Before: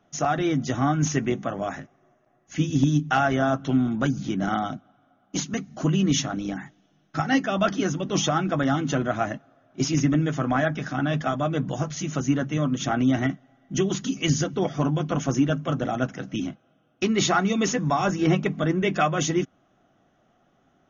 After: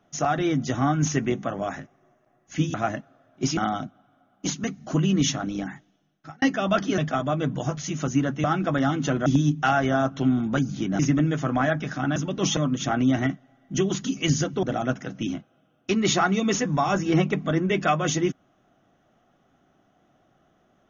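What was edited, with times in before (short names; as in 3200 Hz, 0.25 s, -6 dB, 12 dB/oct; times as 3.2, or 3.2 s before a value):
2.74–4.47 swap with 9.11–9.94
6.58–7.32 fade out
7.88–8.29 swap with 11.11–12.57
14.63–15.76 cut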